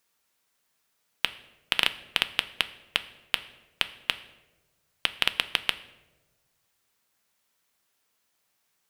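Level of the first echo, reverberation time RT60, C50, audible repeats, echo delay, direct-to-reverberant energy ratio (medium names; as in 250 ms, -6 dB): no echo, 1.2 s, 16.0 dB, no echo, no echo, 11.0 dB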